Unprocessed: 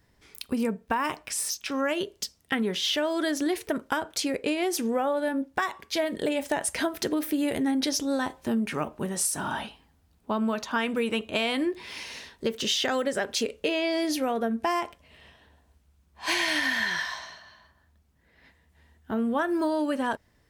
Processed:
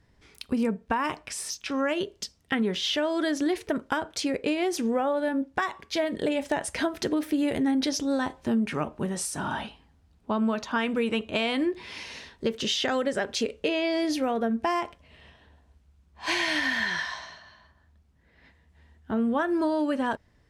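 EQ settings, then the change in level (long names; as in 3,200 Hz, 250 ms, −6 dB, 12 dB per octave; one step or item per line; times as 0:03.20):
high-frequency loss of the air 53 metres
low-shelf EQ 200 Hz +4 dB
high-shelf EQ 11,000 Hz +3 dB
0.0 dB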